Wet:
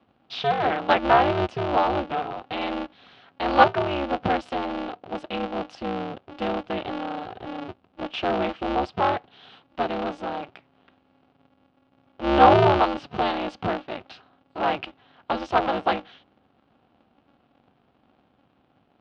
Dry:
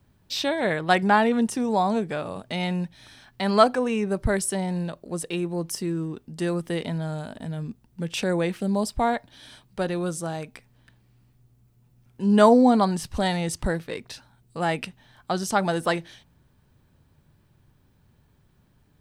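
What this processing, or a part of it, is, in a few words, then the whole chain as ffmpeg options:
ring modulator pedal into a guitar cabinet: -af "aeval=exprs='val(0)*sgn(sin(2*PI*140*n/s))':c=same,highpass=100,equalizer=f=740:t=q:w=4:g=9,equalizer=f=1.3k:t=q:w=4:g=4,equalizer=f=1.9k:t=q:w=4:g=-4,equalizer=f=2.9k:t=q:w=4:g=4,lowpass=f=3.8k:w=0.5412,lowpass=f=3.8k:w=1.3066,volume=-2dB"

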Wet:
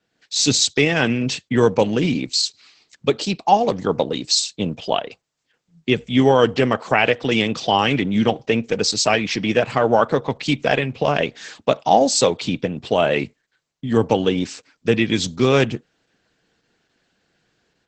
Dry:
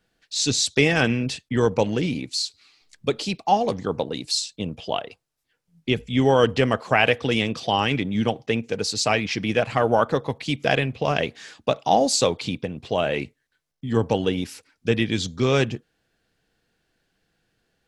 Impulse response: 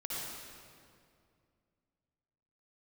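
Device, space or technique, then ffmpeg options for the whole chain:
video call: -af "highpass=120,dynaudnorm=f=110:g=3:m=7dB" -ar 48000 -c:a libopus -b:a 12k

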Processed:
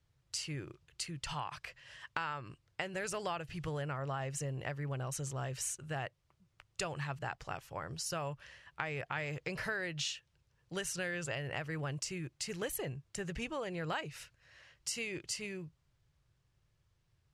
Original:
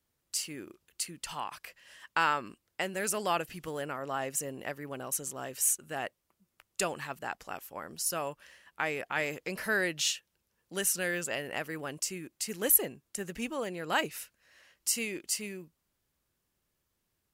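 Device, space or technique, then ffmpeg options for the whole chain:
jukebox: -af "lowpass=5.8k,lowshelf=f=170:t=q:w=3:g=8,acompressor=threshold=-36dB:ratio=5,volume=1dB"

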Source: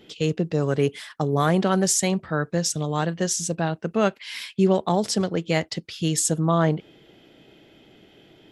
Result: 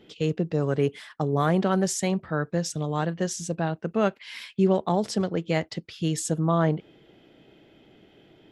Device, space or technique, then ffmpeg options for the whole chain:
behind a face mask: -af "highshelf=f=3.5k:g=-8,volume=-2dB"

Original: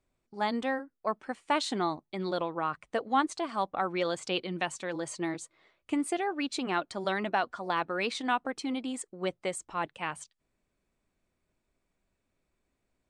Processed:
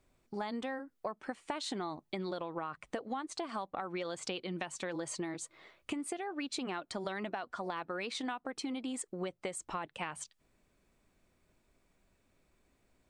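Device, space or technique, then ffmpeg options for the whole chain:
serial compression, leveller first: -af "acompressor=threshold=-31dB:ratio=3,acompressor=threshold=-43dB:ratio=6,volume=7dB"

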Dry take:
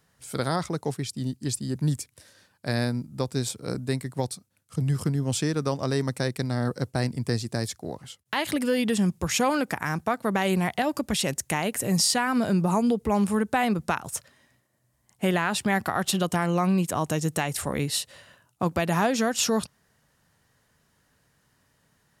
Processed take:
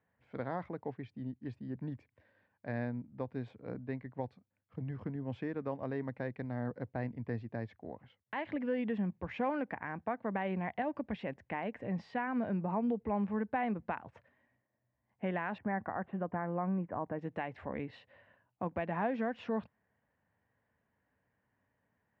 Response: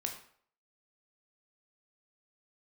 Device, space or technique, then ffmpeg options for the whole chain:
bass cabinet: -filter_complex "[0:a]highpass=79,equalizer=f=150:t=q:w=4:g=-10,equalizer=f=370:t=q:w=4:g=-5,equalizer=f=1.3k:t=q:w=4:g=-9,lowpass=f=2.1k:w=0.5412,lowpass=f=2.1k:w=1.3066,asettb=1/sr,asplit=3[a][b][c];[a]atrim=end=15.584[d];[b]atrim=start=15.58:end=17.19,asetpts=PTS-STARTPTS,afade=t=in:d=0.004:c=qsin,afade=t=out:st=1.606:d=0.004:c=qsin,lowpass=f=1.8k:w=0.5412,lowpass=f=1.8k:w=1.3066[e];[c]atrim=start=17.186[f];[d][e]acrossfade=d=0.004:c1=hsin:c2=qsin[g];[g][f]acrossfade=d=0.004:c1=qsin:c2=hsin,volume=-8.5dB"

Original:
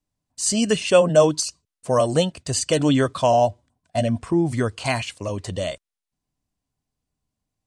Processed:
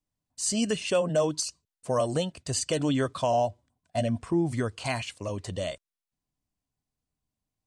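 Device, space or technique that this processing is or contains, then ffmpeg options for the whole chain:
clipper into limiter: -af "asoftclip=type=hard:threshold=-5.5dB,alimiter=limit=-10.5dB:level=0:latency=1:release=209,volume=-5.5dB"

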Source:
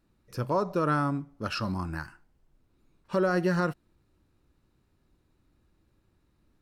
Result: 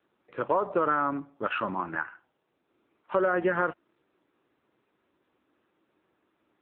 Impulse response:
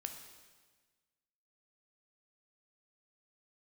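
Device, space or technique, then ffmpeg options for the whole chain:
voicemail: -filter_complex "[0:a]asettb=1/sr,asplit=3[a][b][c];[a]atrim=end=1.494[d];[b]atrim=start=1.49:end=2,asetpts=PTS-STARTPTS,afade=t=in:d=0.004:c=qsin,afade=t=out:st=0.506:d=0.004:c=qsin,lowpass=6.1k[e];[c]atrim=start=1.996[f];[d][e]acrossfade=d=0.004:c1=hsin:c2=qsin[g];[g][f]acrossfade=d=0.004:c1=qsin:c2=hsin,highpass=410,lowpass=2.9k,acompressor=threshold=-29dB:ratio=6,volume=8.5dB" -ar 8000 -c:a libopencore_amrnb -b:a 6700

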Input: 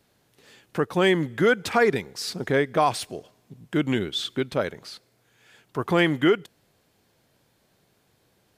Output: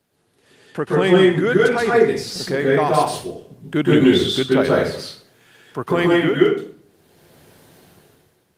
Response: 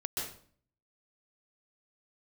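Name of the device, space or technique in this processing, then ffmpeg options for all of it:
far-field microphone of a smart speaker: -filter_complex "[0:a]asplit=3[a][b][c];[a]afade=t=out:st=4.54:d=0.02[d];[b]highpass=74,afade=t=in:st=4.54:d=0.02,afade=t=out:st=5.82:d=0.02[e];[c]afade=t=in:st=5.82:d=0.02[f];[d][e][f]amix=inputs=3:normalize=0[g];[1:a]atrim=start_sample=2205[h];[g][h]afir=irnorm=-1:irlink=0,highpass=92,dynaudnorm=f=110:g=11:m=16dB,volume=-1dB" -ar 48000 -c:a libopus -b:a 32k

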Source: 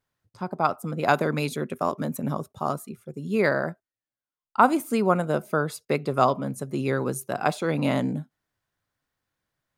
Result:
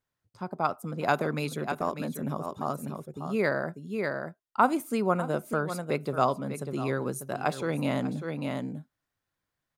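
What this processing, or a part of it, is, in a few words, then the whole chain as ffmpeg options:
ducked delay: -filter_complex "[0:a]asplit=3[a][b][c];[b]adelay=595,volume=-4dB[d];[c]apad=whole_len=457426[e];[d][e]sidechaincompress=threshold=-36dB:ratio=8:attack=40:release=110[f];[a][f]amix=inputs=2:normalize=0,volume=-4.5dB"

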